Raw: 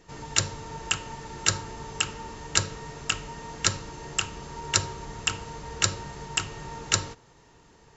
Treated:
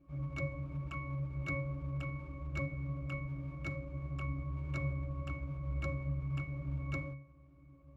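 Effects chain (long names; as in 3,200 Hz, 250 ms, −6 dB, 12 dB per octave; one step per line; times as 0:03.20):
each half-wave held at its own peak
resonances in every octave C#, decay 0.51 s
level +7 dB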